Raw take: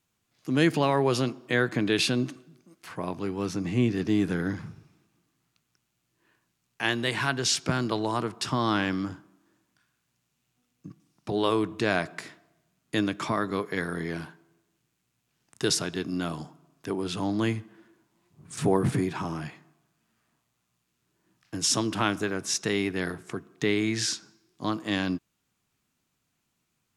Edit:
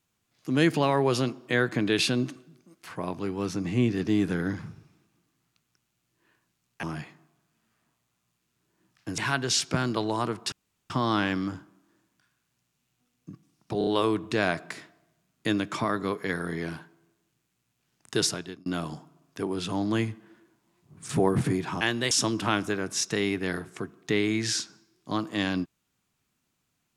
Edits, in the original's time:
6.83–7.13 s: swap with 19.29–21.64 s
8.47 s: insert room tone 0.38 s
11.35 s: stutter 0.03 s, 4 plays
15.73–16.14 s: fade out

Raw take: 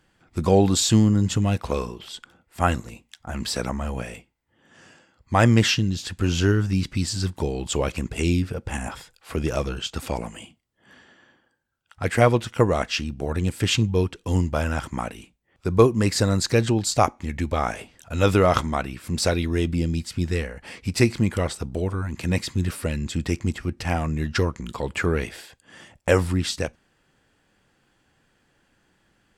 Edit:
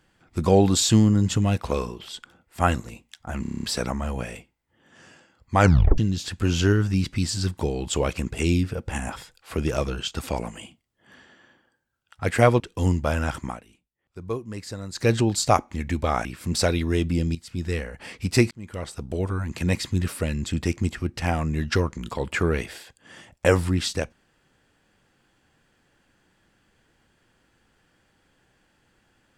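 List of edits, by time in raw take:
3.42 s: stutter 0.03 s, 8 plays
5.39 s: tape stop 0.38 s
12.39–14.09 s: delete
14.91–16.59 s: dip -14 dB, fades 0.18 s
17.74–18.88 s: delete
19.98–20.50 s: fade in, from -13 dB
21.14–21.90 s: fade in

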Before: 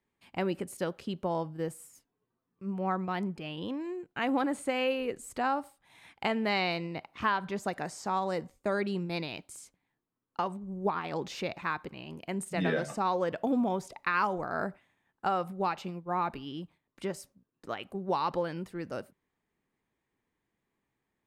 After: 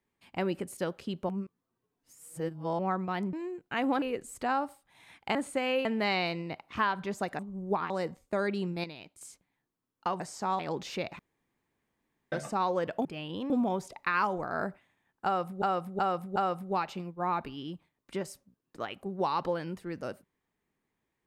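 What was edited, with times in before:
1.29–2.79 s: reverse
3.33–3.78 s: move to 13.50 s
4.47–4.97 s: move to 6.30 s
7.84–8.23 s: swap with 10.53–11.04 s
9.17–9.54 s: gain -8 dB
11.64–12.77 s: room tone
15.25–15.62 s: loop, 4 plays

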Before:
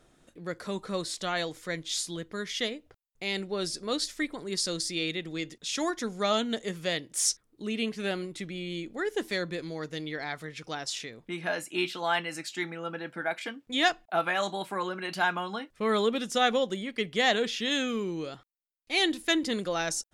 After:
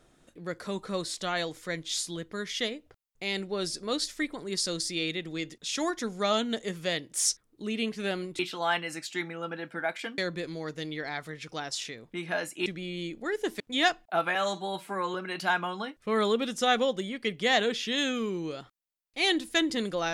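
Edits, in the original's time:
8.39–9.33 s: swap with 11.81–13.60 s
14.35–14.88 s: stretch 1.5×

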